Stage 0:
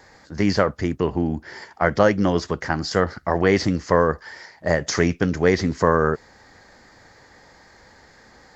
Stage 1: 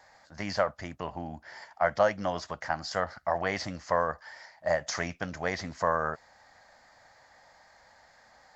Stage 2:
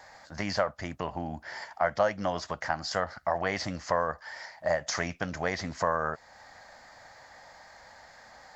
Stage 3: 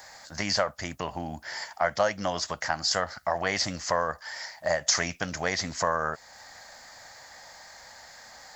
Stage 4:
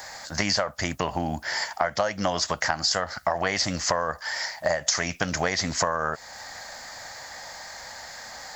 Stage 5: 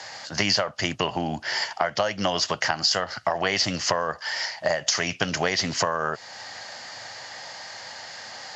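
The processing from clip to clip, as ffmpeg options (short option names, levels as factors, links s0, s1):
-af "lowshelf=f=510:t=q:w=3:g=-7,volume=0.376"
-af "acompressor=threshold=0.00794:ratio=1.5,volume=2.11"
-af "crystalizer=i=3.5:c=0"
-af "acompressor=threshold=0.0398:ratio=12,volume=2.51"
-af "highpass=f=100:w=0.5412,highpass=f=100:w=1.3066,equalizer=f=110:t=q:w=4:g=5,equalizer=f=390:t=q:w=4:g=5,equalizer=f=2900:t=q:w=4:g=10,equalizer=f=4700:t=q:w=4:g=3,equalizer=f=7800:t=q:w=4:g=-5,lowpass=f=8000:w=0.5412,lowpass=f=8000:w=1.3066"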